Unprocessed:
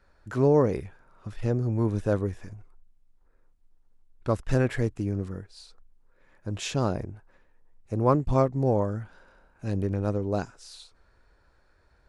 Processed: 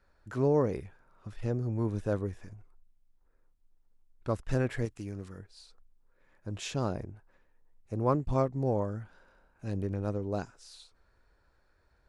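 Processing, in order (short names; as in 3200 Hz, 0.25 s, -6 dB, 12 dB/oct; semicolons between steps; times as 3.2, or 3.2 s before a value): 4.85–5.39 tilt shelf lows -5.5 dB, about 1100 Hz; gain -5.5 dB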